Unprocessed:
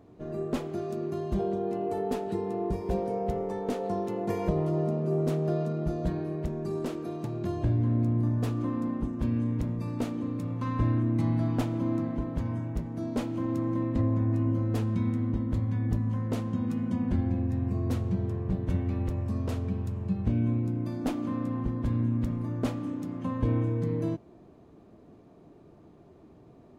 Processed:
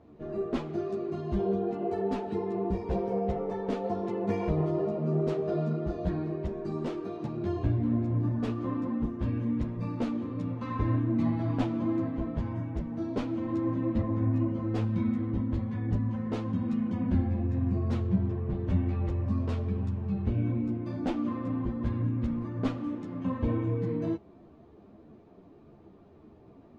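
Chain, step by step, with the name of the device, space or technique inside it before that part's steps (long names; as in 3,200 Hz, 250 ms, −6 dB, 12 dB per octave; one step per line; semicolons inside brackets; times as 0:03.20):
string-machine ensemble chorus (string-ensemble chorus; low-pass filter 4,400 Hz 12 dB per octave)
0:18.07–0:18.58: high-frequency loss of the air 79 metres
level +3 dB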